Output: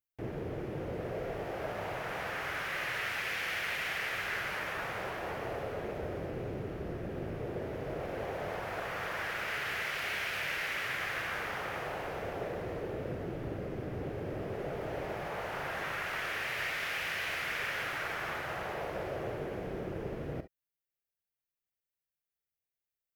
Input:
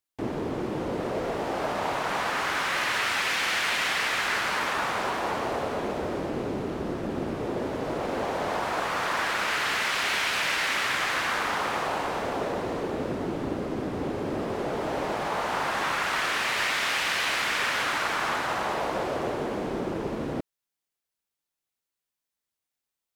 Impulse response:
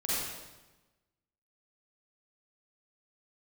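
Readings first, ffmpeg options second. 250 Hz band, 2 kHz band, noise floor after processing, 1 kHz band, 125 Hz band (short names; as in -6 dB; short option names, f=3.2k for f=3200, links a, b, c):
-10.0 dB, -7.5 dB, under -85 dBFS, -11.5 dB, -3.0 dB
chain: -filter_complex "[0:a]equalizer=f=125:t=o:w=1:g=3,equalizer=f=250:t=o:w=1:g=-11,equalizer=f=1k:t=o:w=1:g=-11,equalizer=f=4k:t=o:w=1:g=-9,equalizer=f=8k:t=o:w=1:g=-12,asplit=2[a][b];[1:a]atrim=start_sample=2205,atrim=end_sample=3087[c];[b][c]afir=irnorm=-1:irlink=0,volume=-10dB[d];[a][d]amix=inputs=2:normalize=0,volume=-4.5dB"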